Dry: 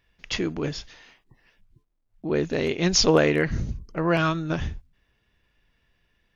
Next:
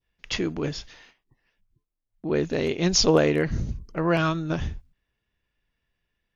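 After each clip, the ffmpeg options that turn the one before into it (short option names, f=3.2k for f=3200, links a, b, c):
-af "agate=range=-10dB:threshold=-51dB:ratio=16:detection=peak,adynamicequalizer=threshold=0.0112:dfrequency=1900:dqfactor=0.92:tfrequency=1900:tqfactor=0.92:attack=5:release=100:ratio=0.375:range=2.5:mode=cutabove:tftype=bell"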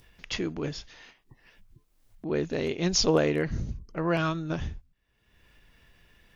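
-af "acompressor=mode=upward:threshold=-35dB:ratio=2.5,volume=-4dB"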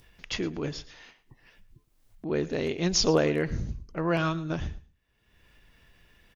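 -af "aecho=1:1:112|224:0.112|0.0224"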